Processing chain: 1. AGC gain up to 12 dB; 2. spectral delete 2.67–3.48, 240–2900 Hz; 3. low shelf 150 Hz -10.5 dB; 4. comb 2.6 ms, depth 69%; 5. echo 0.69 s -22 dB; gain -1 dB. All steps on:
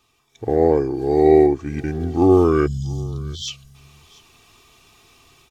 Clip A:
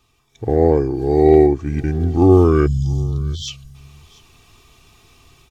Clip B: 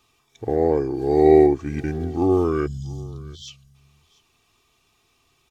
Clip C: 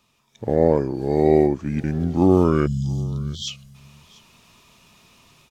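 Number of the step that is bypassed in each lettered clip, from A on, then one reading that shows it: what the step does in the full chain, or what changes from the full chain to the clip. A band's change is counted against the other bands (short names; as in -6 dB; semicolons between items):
3, 125 Hz band +6.5 dB; 1, crest factor change +2.0 dB; 4, 125 Hz band +4.0 dB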